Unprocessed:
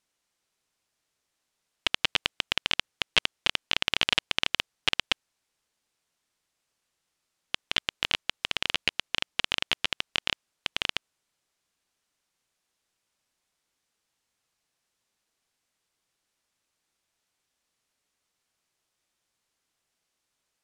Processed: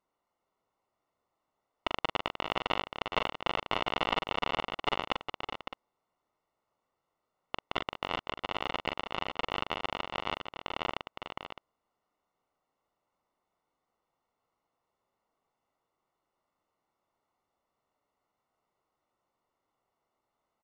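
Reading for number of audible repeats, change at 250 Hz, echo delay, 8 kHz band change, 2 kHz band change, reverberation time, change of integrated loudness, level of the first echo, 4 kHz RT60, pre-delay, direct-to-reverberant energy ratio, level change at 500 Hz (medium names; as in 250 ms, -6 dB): 4, +2.5 dB, 42 ms, -17.0 dB, -7.0 dB, no reverb, -6.5 dB, -6.0 dB, no reverb, no reverb, no reverb, +5.5 dB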